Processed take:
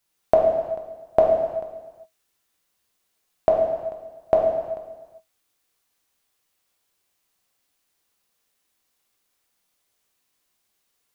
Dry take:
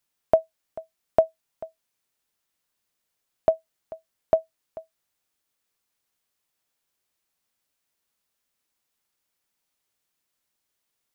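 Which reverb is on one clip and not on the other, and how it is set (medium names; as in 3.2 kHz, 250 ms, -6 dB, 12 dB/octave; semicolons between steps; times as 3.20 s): gated-style reverb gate 440 ms falling, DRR -1.5 dB; trim +2.5 dB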